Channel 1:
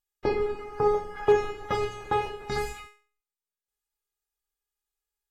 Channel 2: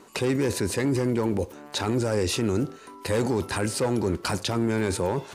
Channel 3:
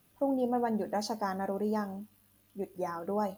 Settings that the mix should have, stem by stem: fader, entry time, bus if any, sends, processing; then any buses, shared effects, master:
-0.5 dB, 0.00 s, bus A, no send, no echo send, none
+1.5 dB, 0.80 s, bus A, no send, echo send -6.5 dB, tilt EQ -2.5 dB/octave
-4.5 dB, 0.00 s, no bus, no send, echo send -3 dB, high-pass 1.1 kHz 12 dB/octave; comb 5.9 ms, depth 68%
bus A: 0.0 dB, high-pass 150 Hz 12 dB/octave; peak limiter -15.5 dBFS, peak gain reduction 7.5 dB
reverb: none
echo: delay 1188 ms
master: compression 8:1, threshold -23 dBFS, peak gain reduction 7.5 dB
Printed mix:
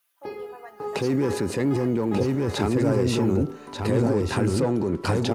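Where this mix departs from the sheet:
stem 1 -0.5 dB -> -9.0 dB; master: missing compression 8:1, threshold -23 dBFS, peak gain reduction 7.5 dB

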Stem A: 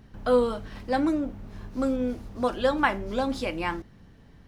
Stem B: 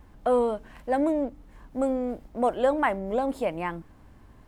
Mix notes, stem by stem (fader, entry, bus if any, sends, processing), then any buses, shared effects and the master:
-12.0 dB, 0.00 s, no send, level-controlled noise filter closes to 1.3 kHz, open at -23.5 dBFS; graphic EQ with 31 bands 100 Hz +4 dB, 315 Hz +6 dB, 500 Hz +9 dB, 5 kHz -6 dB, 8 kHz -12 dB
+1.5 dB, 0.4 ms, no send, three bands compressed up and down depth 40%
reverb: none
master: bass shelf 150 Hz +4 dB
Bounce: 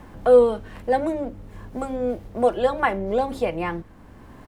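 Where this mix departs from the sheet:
stem A -12.0 dB -> -3.5 dB; master: missing bass shelf 150 Hz +4 dB

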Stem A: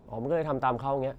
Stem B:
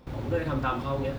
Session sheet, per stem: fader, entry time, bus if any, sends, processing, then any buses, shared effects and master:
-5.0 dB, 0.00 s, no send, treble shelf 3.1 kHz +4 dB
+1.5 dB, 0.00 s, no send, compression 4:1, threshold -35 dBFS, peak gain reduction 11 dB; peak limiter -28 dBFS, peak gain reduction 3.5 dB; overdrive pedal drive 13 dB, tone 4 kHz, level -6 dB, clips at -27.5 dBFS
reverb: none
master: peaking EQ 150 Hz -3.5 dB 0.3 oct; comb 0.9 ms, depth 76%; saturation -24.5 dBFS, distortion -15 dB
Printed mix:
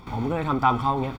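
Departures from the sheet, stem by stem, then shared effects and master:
stem A -5.0 dB -> +4.5 dB; master: missing saturation -24.5 dBFS, distortion -15 dB

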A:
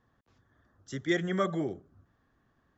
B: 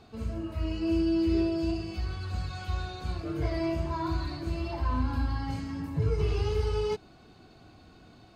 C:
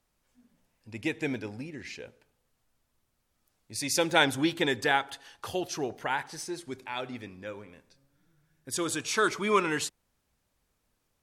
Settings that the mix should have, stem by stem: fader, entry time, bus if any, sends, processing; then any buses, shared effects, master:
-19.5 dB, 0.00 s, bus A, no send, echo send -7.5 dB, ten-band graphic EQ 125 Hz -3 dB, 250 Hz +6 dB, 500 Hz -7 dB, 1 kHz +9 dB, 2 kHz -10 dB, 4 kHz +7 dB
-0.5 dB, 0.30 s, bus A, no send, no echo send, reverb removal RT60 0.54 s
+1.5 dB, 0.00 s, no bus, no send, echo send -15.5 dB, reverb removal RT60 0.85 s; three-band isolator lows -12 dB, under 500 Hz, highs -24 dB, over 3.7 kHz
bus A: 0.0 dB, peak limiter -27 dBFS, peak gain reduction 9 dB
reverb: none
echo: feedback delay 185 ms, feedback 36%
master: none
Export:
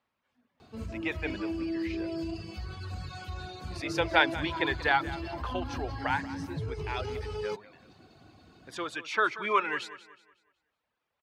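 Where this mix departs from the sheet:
stem B: entry 0.30 s -> 0.60 s; master: extra high-pass 68 Hz

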